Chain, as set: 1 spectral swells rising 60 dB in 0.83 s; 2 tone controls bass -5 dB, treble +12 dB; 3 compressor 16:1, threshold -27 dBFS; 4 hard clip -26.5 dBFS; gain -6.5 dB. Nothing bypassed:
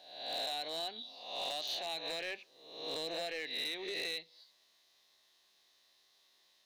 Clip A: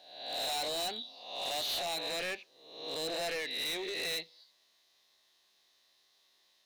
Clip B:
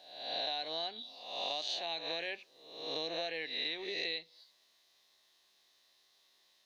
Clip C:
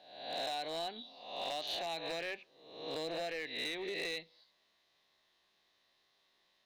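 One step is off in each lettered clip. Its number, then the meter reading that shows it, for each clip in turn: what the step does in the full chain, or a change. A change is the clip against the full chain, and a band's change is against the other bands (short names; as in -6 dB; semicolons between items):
3, mean gain reduction 5.5 dB; 4, distortion -14 dB; 2, loudness change -1.0 LU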